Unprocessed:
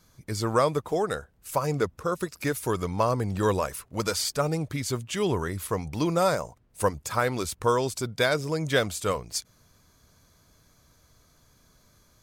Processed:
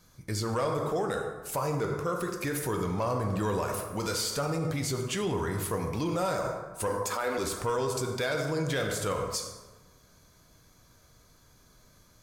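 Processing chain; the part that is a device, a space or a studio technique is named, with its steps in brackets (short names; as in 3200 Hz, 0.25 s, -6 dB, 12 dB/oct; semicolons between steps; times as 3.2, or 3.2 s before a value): 6.87–7.38 HPF 250 Hz 24 dB/oct; plate-style reverb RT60 1.2 s, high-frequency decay 0.55×, pre-delay 0 ms, DRR 4 dB; soft clipper into limiter (soft clip -13.5 dBFS, distortion -21 dB; limiter -22 dBFS, peak gain reduction 7.5 dB)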